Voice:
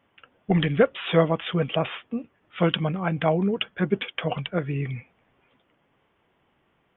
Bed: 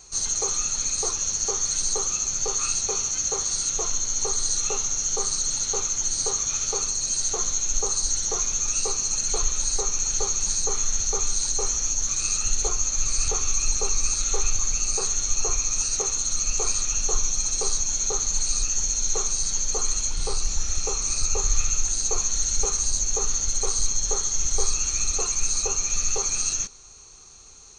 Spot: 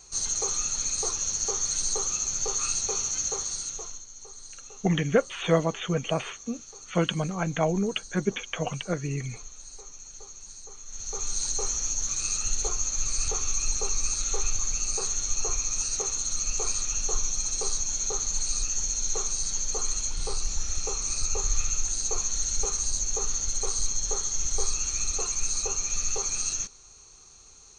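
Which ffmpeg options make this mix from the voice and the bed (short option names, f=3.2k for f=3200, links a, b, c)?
-filter_complex "[0:a]adelay=4350,volume=-3dB[a];[1:a]volume=13dB,afade=t=out:st=3.19:d=0.87:silence=0.141254,afade=t=in:st=10.86:d=0.56:silence=0.158489[b];[a][b]amix=inputs=2:normalize=0"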